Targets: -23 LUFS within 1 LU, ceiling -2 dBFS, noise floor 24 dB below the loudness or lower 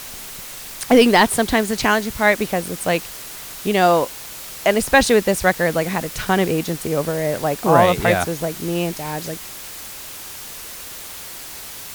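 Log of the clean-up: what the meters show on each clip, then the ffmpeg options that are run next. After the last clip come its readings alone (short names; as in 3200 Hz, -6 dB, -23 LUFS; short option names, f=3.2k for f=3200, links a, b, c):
noise floor -35 dBFS; noise floor target -43 dBFS; loudness -18.5 LUFS; peak -2.0 dBFS; loudness target -23.0 LUFS
-> -af "afftdn=nr=8:nf=-35"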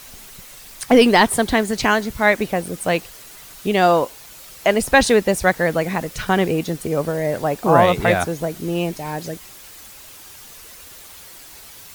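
noise floor -41 dBFS; noise floor target -43 dBFS
-> -af "afftdn=nr=6:nf=-41"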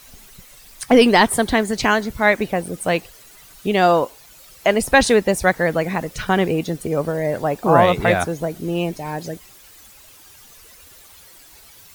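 noise floor -46 dBFS; loudness -18.5 LUFS; peak -2.5 dBFS; loudness target -23.0 LUFS
-> -af "volume=-4.5dB"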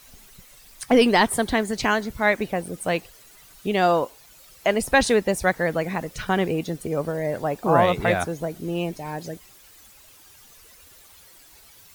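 loudness -23.0 LUFS; peak -7.0 dBFS; noise floor -51 dBFS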